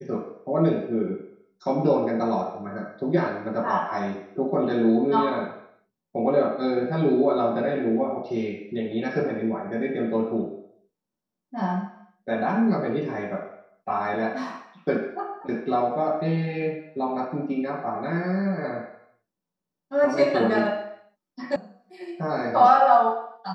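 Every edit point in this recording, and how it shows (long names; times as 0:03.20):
0:21.56: cut off before it has died away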